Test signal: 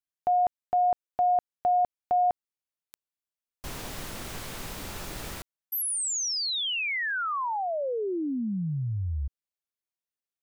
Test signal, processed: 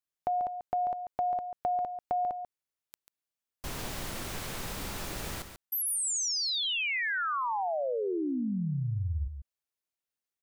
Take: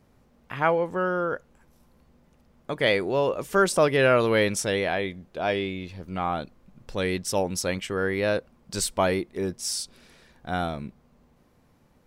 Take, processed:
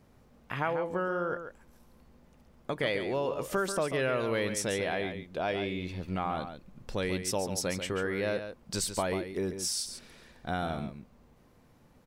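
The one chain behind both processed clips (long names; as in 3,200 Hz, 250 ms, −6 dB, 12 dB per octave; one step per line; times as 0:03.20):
downward compressor 3 to 1, threshold −30 dBFS
single-tap delay 140 ms −9 dB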